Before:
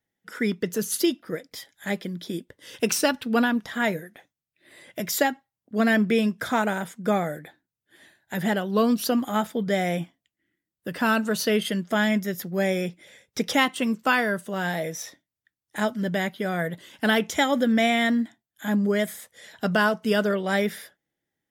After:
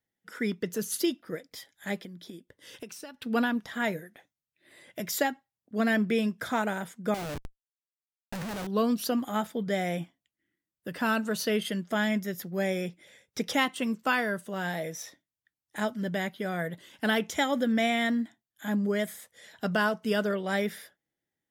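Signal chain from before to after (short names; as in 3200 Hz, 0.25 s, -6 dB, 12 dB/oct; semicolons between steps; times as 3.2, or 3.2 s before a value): 1.99–3.22 compressor 8:1, threshold -36 dBFS, peak gain reduction 19.5 dB; 7.14–8.67 Schmitt trigger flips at -34.5 dBFS; gain -5 dB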